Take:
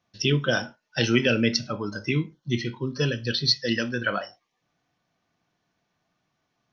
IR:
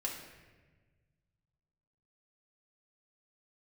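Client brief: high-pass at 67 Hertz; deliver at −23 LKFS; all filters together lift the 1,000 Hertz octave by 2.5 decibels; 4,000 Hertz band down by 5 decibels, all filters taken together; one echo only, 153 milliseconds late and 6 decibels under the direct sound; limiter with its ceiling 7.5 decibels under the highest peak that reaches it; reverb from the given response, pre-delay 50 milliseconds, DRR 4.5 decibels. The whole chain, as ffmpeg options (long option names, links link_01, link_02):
-filter_complex "[0:a]highpass=67,equalizer=frequency=1000:width_type=o:gain=4.5,equalizer=frequency=4000:width_type=o:gain=-6.5,alimiter=limit=-15dB:level=0:latency=1,aecho=1:1:153:0.501,asplit=2[link_01][link_02];[1:a]atrim=start_sample=2205,adelay=50[link_03];[link_02][link_03]afir=irnorm=-1:irlink=0,volume=-6dB[link_04];[link_01][link_04]amix=inputs=2:normalize=0,volume=3dB"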